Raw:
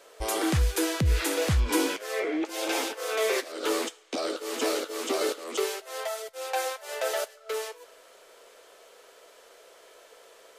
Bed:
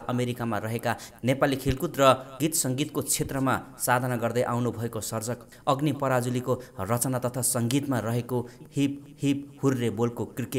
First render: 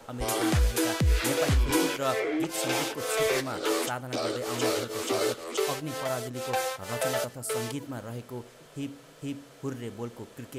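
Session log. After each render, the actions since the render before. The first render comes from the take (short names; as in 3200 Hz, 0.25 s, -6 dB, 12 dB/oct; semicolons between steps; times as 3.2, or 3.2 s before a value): add bed -10.5 dB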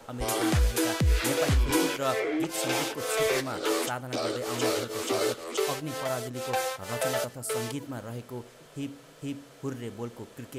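nothing audible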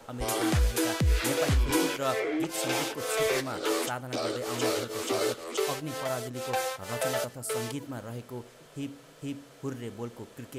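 gain -1 dB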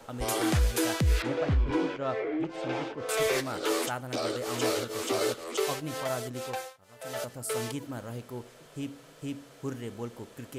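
1.22–3.09 tape spacing loss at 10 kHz 31 dB; 6.36–7.36 dip -20 dB, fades 0.38 s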